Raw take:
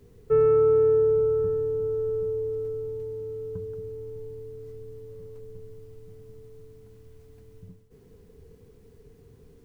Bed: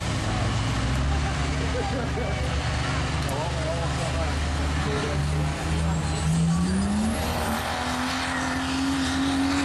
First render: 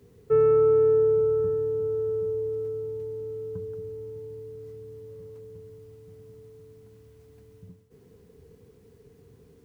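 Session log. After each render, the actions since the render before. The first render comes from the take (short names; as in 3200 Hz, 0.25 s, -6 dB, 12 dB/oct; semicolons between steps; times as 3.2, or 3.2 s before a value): HPF 79 Hz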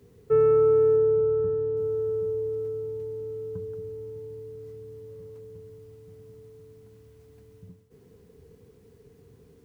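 0.96–1.77 air absorption 160 m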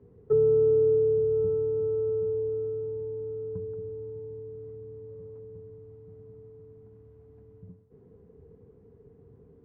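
treble ducked by the level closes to 500 Hz, closed at -20 dBFS; LPF 1000 Hz 12 dB/oct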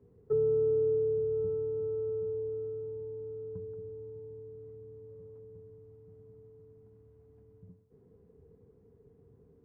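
gain -6 dB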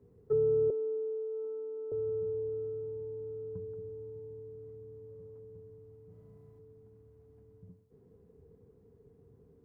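0.7–1.92 rippled Chebyshev high-pass 270 Hz, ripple 9 dB; 6.07–6.59 flutter echo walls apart 6 m, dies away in 1 s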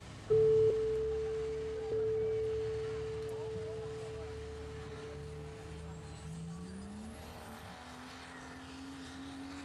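add bed -22.5 dB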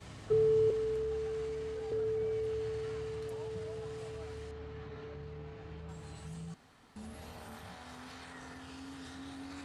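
4.51–5.89 air absorption 180 m; 6.54–6.96 room tone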